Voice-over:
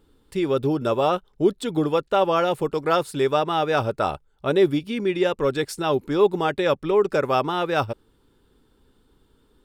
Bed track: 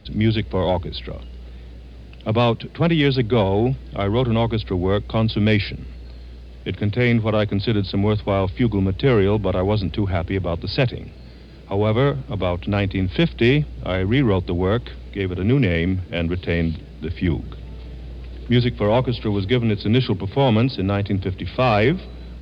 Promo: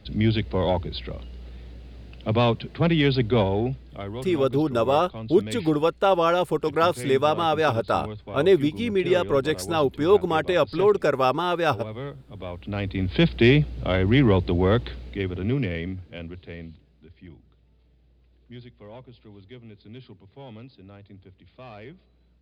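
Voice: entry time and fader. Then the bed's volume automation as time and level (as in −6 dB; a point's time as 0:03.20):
3.90 s, 0.0 dB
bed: 0:03.41 −3 dB
0:04.32 −16.5 dB
0:12.27 −16.5 dB
0:13.26 −0.5 dB
0:14.87 −0.5 dB
0:17.32 −25.5 dB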